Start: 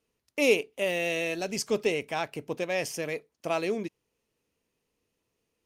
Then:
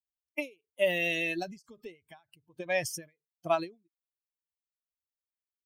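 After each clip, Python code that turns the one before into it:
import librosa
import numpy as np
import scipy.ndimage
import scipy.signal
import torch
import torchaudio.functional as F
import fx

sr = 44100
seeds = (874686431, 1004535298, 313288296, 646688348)

y = fx.bin_expand(x, sr, power=2.0)
y = fx.end_taper(y, sr, db_per_s=230.0)
y = y * librosa.db_to_amplitude(5.5)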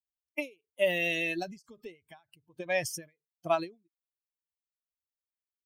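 y = x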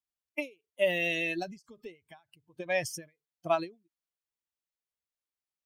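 y = fx.high_shelf(x, sr, hz=8800.0, db=-5.0)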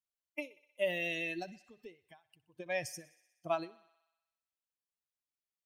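y = fx.echo_thinned(x, sr, ms=62, feedback_pct=71, hz=430.0, wet_db=-21.0)
y = y * librosa.db_to_amplitude(-6.0)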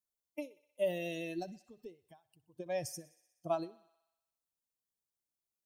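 y = fx.peak_eq(x, sr, hz=2100.0, db=-15.0, octaves=1.6)
y = y * librosa.db_to_amplitude(3.0)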